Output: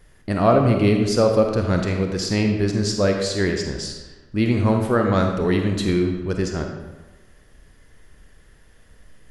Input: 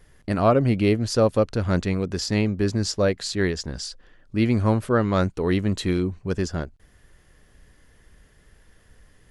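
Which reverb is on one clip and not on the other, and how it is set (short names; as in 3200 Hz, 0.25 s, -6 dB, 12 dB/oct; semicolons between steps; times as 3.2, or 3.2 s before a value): digital reverb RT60 1.2 s, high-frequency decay 0.75×, pre-delay 5 ms, DRR 3 dB; gain +1 dB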